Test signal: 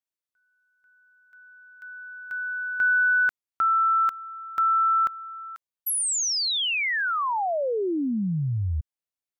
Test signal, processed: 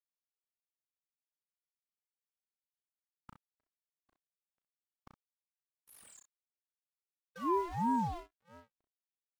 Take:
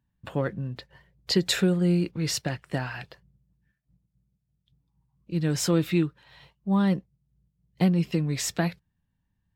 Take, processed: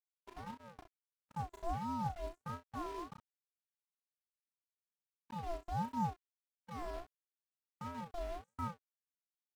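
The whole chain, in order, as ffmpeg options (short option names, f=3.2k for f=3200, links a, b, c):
-filter_complex "[0:a]areverse,acompressor=threshold=-37dB:ratio=6:attack=16:release=107:knee=6:detection=rms,areverse,aeval=exprs='0.1*(cos(1*acos(clip(val(0)/0.1,-1,1)))-cos(1*PI/2))+0.00794*(cos(3*acos(clip(val(0)/0.1,-1,1)))-cos(3*PI/2))+0.00282*(cos(5*acos(clip(val(0)/0.1,-1,1)))-cos(5*PI/2))':c=same,afftfilt=real='re*(1-between(b*sr/4096,900,6700))':imag='im*(1-between(b*sr/4096,900,6700))':win_size=4096:overlap=0.75,asoftclip=type=tanh:threshold=-36.5dB,dynaudnorm=f=170:g=9:m=5dB,acrossover=split=250 2900:gain=0.0708 1 0.141[a][b][c];[a][b][c]amix=inputs=3:normalize=0,afftfilt=real='hypot(re,im)*cos(PI*b)':imag='0':win_size=512:overlap=0.75,acrusher=bits=8:mix=0:aa=0.000001,agate=range=-27dB:threshold=-57dB:ratio=16:release=56:detection=peak,aemphasis=mode=reproduction:type=cd,aecho=1:1:35|64:0.562|0.299,aeval=exprs='val(0)*sin(2*PI*450*n/s+450*0.35/1.5*sin(2*PI*1.5*n/s))':c=same,volume=5.5dB"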